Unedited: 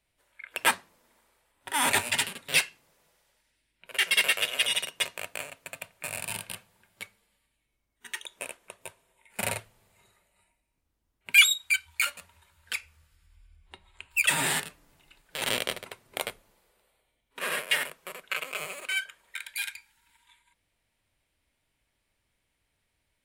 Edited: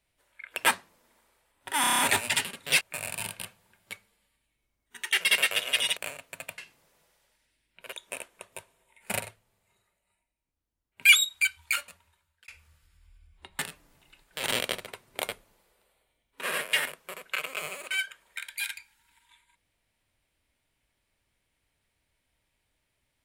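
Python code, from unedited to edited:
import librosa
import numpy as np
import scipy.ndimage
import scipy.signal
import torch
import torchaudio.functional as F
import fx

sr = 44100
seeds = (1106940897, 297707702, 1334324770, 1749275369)

y = fx.edit(x, sr, fx.stutter(start_s=1.81, slice_s=0.03, count=7),
    fx.swap(start_s=2.63, length_s=1.35, other_s=5.91, other_length_s=2.31),
    fx.cut(start_s=4.83, length_s=0.47),
    fx.clip_gain(start_s=9.48, length_s=1.82, db=-8.5),
    fx.fade_out_span(start_s=11.9, length_s=0.87),
    fx.cut(start_s=13.88, length_s=0.69), tone=tone)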